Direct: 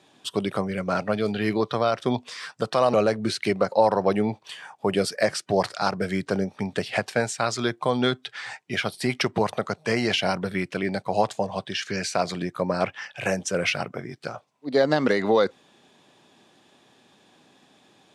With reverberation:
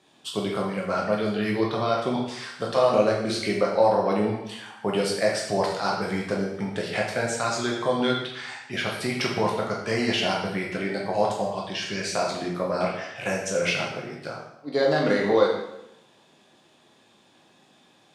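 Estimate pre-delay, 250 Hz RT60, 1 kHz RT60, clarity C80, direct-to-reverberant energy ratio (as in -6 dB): 5 ms, 0.85 s, 0.85 s, 6.5 dB, -2.5 dB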